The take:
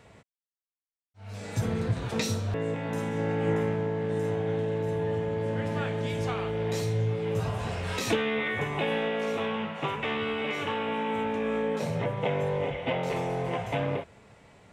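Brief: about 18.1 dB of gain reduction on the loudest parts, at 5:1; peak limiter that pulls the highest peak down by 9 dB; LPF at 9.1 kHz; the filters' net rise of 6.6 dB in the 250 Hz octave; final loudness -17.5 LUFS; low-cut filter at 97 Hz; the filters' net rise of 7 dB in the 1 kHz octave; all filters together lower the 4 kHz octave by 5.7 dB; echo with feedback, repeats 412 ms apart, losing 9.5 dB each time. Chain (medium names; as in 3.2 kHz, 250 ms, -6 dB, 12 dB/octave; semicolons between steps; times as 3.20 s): high-pass 97 Hz; low-pass 9.1 kHz; peaking EQ 250 Hz +8.5 dB; peaking EQ 1 kHz +8.5 dB; peaking EQ 4 kHz -9 dB; compression 5:1, threshold -38 dBFS; peak limiter -35 dBFS; feedback delay 412 ms, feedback 33%, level -9.5 dB; trim +25.5 dB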